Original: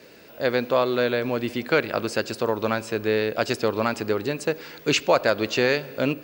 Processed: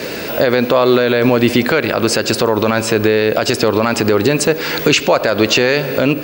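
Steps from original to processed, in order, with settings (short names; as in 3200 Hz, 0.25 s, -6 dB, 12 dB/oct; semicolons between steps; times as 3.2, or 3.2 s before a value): compressor 2:1, threshold -37 dBFS, peak gain reduction 13 dB; maximiser +26 dB; gain -1 dB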